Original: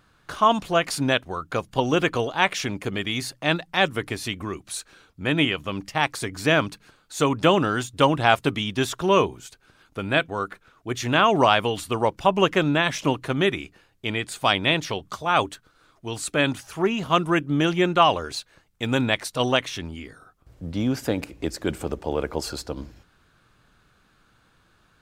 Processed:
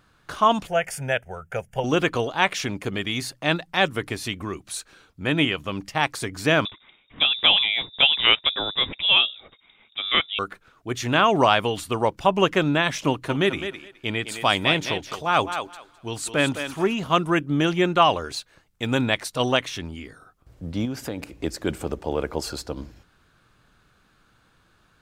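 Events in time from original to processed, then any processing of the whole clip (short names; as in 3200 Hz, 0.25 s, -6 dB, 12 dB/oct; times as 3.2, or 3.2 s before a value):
0.67–1.84 fixed phaser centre 1100 Hz, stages 6
6.65–10.39 inverted band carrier 3700 Hz
13.08–16.94 thinning echo 0.21 s, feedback 18%, high-pass 300 Hz, level -8 dB
20.85–21.4 compressor 2:1, threshold -30 dBFS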